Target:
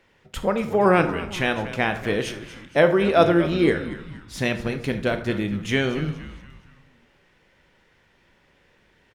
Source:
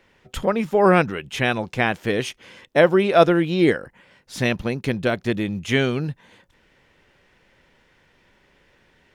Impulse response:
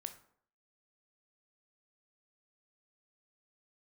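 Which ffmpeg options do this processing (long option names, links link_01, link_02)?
-filter_complex "[0:a]asplit=5[link_01][link_02][link_03][link_04][link_05];[link_02]adelay=235,afreqshift=-97,volume=-14dB[link_06];[link_03]adelay=470,afreqshift=-194,volume=-20.9dB[link_07];[link_04]adelay=705,afreqshift=-291,volume=-27.9dB[link_08];[link_05]adelay=940,afreqshift=-388,volume=-34.8dB[link_09];[link_01][link_06][link_07][link_08][link_09]amix=inputs=5:normalize=0[link_10];[1:a]atrim=start_sample=2205,asetrate=39690,aresample=44100[link_11];[link_10][link_11]afir=irnorm=-1:irlink=0,volume=1dB"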